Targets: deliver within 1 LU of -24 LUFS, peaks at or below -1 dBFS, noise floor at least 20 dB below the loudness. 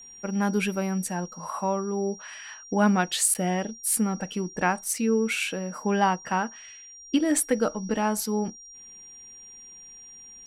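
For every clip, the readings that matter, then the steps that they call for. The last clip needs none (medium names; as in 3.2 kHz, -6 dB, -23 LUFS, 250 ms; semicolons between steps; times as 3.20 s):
dropouts 1; longest dropout 8.7 ms; steady tone 5.7 kHz; tone level -44 dBFS; loudness -26.5 LUFS; peak level -10.0 dBFS; loudness target -24.0 LUFS
-> interpolate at 3.34 s, 8.7 ms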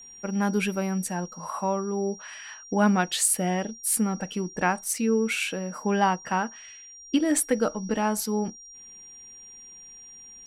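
dropouts 0; steady tone 5.7 kHz; tone level -44 dBFS
-> band-stop 5.7 kHz, Q 30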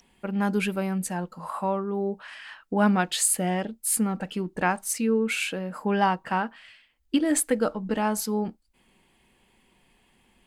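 steady tone not found; loudness -26.5 LUFS; peak level -10.0 dBFS; loudness target -24.0 LUFS
-> trim +2.5 dB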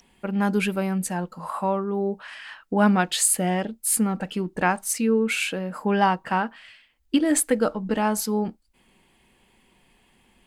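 loudness -24.0 LUFS; peak level -7.5 dBFS; noise floor -63 dBFS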